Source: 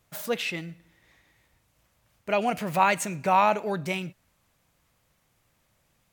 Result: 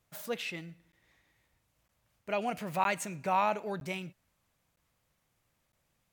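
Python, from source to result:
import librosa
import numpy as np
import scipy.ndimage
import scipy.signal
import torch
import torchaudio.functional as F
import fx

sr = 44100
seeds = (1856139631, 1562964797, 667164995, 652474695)

y = fx.dmg_crackle(x, sr, seeds[0], per_s=29.0, level_db=-54.0, at=(2.47, 3.4), fade=0.02)
y = fx.buffer_crackle(y, sr, first_s=0.92, period_s=0.96, block=512, kind='zero')
y = F.gain(torch.from_numpy(y), -7.5).numpy()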